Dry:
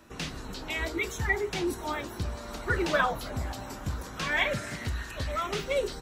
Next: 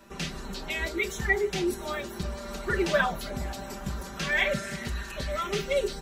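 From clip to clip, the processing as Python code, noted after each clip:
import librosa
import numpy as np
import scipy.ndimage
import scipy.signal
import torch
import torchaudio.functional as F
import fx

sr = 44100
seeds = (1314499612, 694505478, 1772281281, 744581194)

y = x + 0.76 * np.pad(x, (int(5.1 * sr / 1000.0), 0))[:len(x)]
y = fx.dynamic_eq(y, sr, hz=1000.0, q=1.7, threshold_db=-44.0, ratio=4.0, max_db=-5)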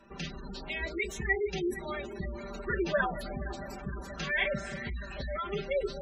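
y = fx.echo_alternate(x, sr, ms=232, hz=800.0, feedback_pct=85, wet_db=-14)
y = fx.spec_gate(y, sr, threshold_db=-20, keep='strong')
y = F.gain(torch.from_numpy(y), -4.0).numpy()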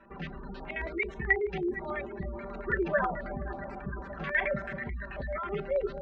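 y = fx.filter_lfo_lowpass(x, sr, shape='square', hz=9.2, low_hz=950.0, high_hz=1900.0, q=1.7)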